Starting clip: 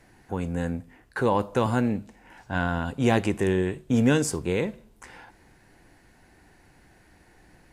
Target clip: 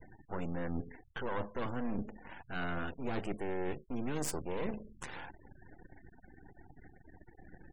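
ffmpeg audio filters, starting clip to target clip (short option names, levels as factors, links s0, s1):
-af "aeval=exprs='max(val(0),0)':c=same,bandreject=f=212.7:t=h:w=4,bandreject=f=425.4:t=h:w=4,areverse,acompressor=threshold=0.0141:ratio=10,areverse,afftfilt=real='re*gte(hypot(re,im),0.002)':imag='im*gte(hypot(re,im),0.002)':win_size=1024:overlap=0.75,volume=1.88"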